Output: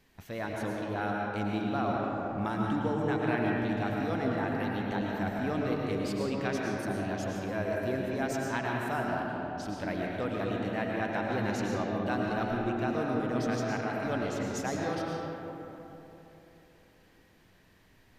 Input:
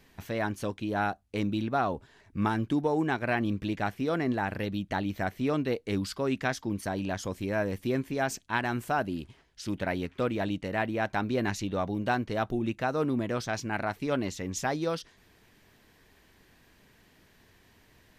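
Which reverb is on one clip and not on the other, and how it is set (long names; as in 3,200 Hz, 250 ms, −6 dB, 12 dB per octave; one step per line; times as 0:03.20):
comb and all-pass reverb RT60 3.5 s, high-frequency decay 0.4×, pre-delay 70 ms, DRR −2.5 dB
level −6 dB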